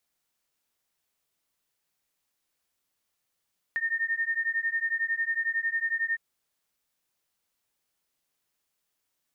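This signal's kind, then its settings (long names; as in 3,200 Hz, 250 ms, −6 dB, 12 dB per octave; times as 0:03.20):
two tones that beat 1,820 Hz, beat 11 Hz, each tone −29 dBFS 2.41 s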